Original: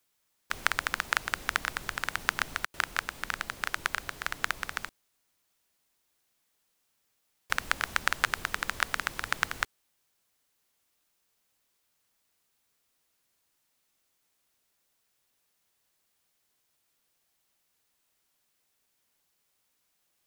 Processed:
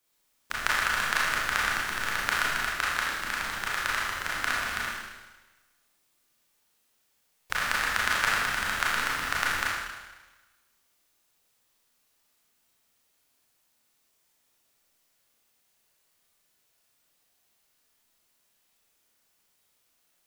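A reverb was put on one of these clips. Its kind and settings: Schroeder reverb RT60 1.2 s, combs from 26 ms, DRR -6 dB; trim -2.5 dB

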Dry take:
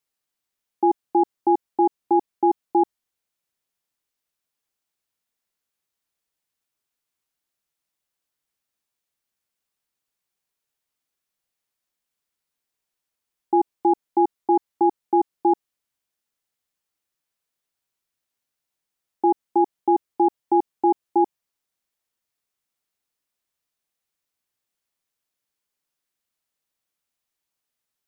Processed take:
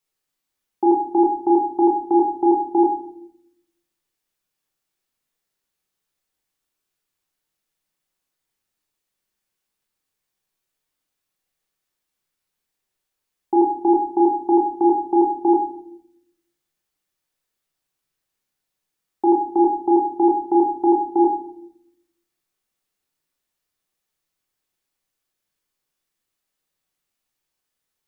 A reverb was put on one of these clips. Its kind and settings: simulated room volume 140 m³, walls mixed, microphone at 1 m

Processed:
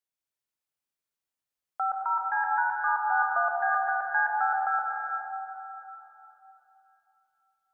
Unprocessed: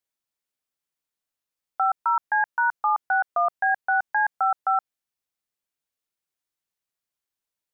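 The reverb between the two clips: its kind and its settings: plate-style reverb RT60 3.3 s, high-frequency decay 0.75×, pre-delay 110 ms, DRR -1.5 dB; trim -6.5 dB

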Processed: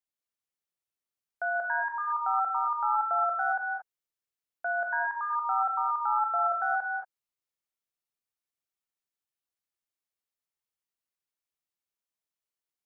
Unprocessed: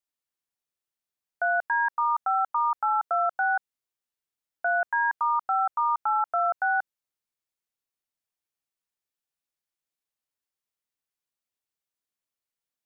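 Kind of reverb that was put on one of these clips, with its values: gated-style reverb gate 250 ms rising, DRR 1 dB; trim -6 dB

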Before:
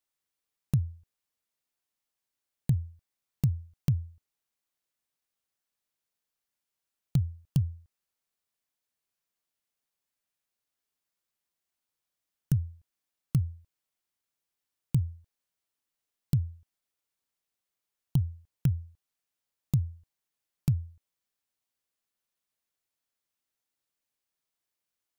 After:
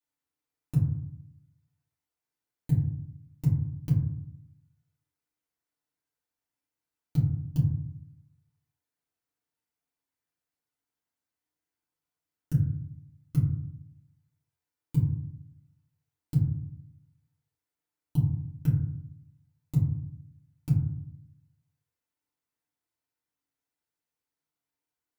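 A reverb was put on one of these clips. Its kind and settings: FDN reverb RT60 0.7 s, low-frequency decay 1.45×, high-frequency decay 0.3×, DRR -9 dB; trim -10.5 dB

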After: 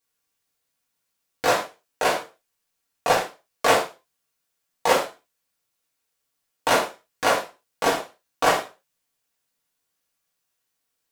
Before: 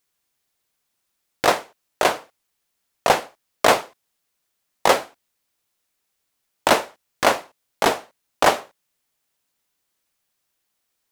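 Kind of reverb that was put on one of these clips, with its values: gated-style reverb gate 140 ms falling, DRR -4.5 dB; trim -8 dB

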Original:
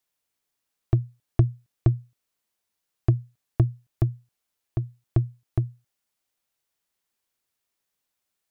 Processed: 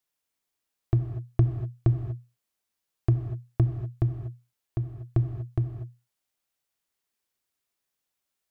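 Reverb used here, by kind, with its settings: gated-style reverb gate 270 ms flat, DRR 6 dB; trim -3 dB

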